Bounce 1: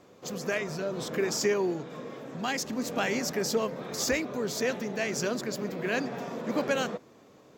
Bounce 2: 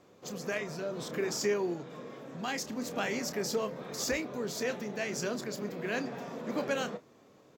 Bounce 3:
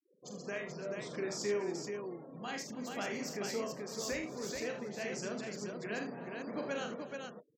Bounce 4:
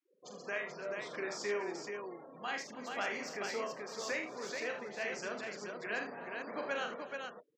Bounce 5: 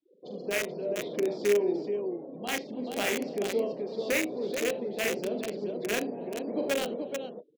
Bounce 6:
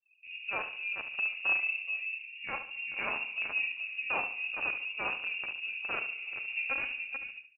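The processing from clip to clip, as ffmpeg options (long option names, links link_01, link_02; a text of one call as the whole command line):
ffmpeg -i in.wav -filter_complex "[0:a]asplit=2[link_01][link_02];[link_02]adelay=29,volume=-11.5dB[link_03];[link_01][link_03]amix=inputs=2:normalize=0,volume=-4.5dB" out.wav
ffmpeg -i in.wav -af "afftfilt=real='re*gte(hypot(re,im),0.00631)':imag='im*gte(hypot(re,im),0.00631)':win_size=1024:overlap=0.75,aecho=1:1:44|76|288|431:0.473|0.335|0.119|0.596,volume=-7dB" out.wav
ffmpeg -i in.wav -af "bandpass=frequency=1500:width_type=q:width=0.63:csg=0,volume=5dB" out.wav
ffmpeg -i in.wav -filter_complex "[0:a]firequalizer=gain_entry='entry(110,0);entry(190,5);entry(320,7);entry(1200,-10);entry(2200,3);entry(3700,4);entry(6300,-27)':delay=0.05:min_phase=1,acrossover=split=340|910|3800[link_01][link_02][link_03][link_04];[link_03]acrusher=bits=5:mix=0:aa=0.000001[link_05];[link_01][link_02][link_05][link_04]amix=inputs=4:normalize=0,volume=7.5dB" out.wav
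ffmpeg -i in.wav -filter_complex "[0:a]asplit=2[link_01][link_02];[link_02]aecho=0:1:72|144|216|288:0.282|0.101|0.0365|0.0131[link_03];[link_01][link_03]amix=inputs=2:normalize=0,lowpass=frequency=2600:width_type=q:width=0.5098,lowpass=frequency=2600:width_type=q:width=0.6013,lowpass=frequency=2600:width_type=q:width=0.9,lowpass=frequency=2600:width_type=q:width=2.563,afreqshift=-3000,volume=-4.5dB" out.wav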